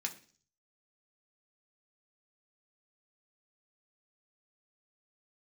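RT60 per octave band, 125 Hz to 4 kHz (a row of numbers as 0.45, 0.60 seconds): 0.70, 0.55, 0.45, 0.40, 0.45, 0.55 seconds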